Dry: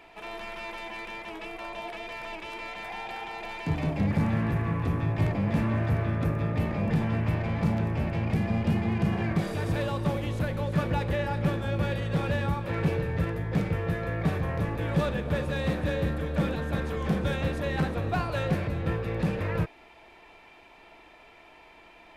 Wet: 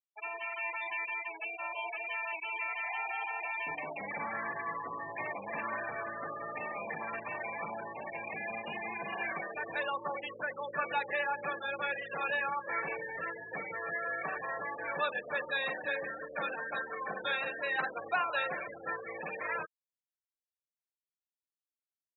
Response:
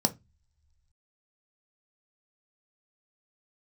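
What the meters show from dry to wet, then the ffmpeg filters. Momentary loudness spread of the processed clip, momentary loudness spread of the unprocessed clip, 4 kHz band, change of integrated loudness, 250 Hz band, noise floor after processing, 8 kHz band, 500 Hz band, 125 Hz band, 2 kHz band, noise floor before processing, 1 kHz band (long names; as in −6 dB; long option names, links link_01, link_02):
6 LU, 10 LU, −4.0 dB, −7.0 dB, −21.5 dB, below −85 dBFS, can't be measured, −7.5 dB, −31.0 dB, +2.5 dB, −53 dBFS, −0.5 dB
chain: -af "acontrast=80,afftfilt=real='re*gte(hypot(re,im),0.0631)':imag='im*gte(hypot(re,im),0.0631)':win_size=1024:overlap=0.75,highpass=1100,volume=-1.5dB"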